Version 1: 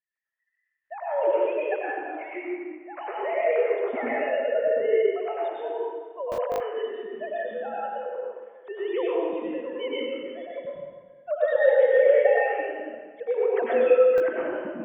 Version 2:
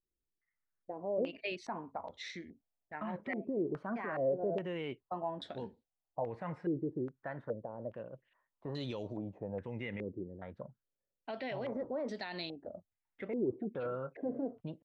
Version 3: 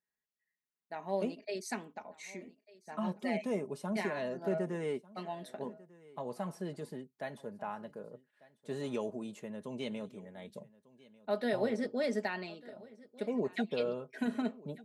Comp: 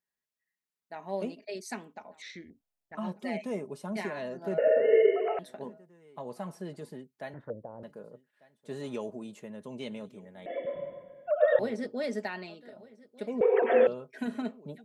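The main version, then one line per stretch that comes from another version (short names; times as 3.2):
3
2.22–2.95 from 2
4.58–5.39 from 1
7.34–7.83 from 2
10.46–11.59 from 1
13.41–13.87 from 1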